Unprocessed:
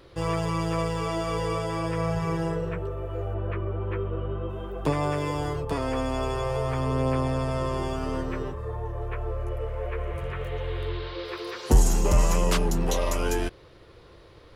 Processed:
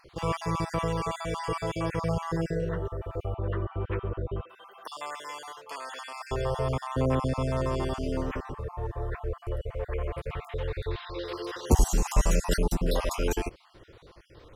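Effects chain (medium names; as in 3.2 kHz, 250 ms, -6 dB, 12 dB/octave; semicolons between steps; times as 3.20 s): random holes in the spectrogram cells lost 37%; 4.43–6.21 s: high-pass 1.2 kHz 12 dB/octave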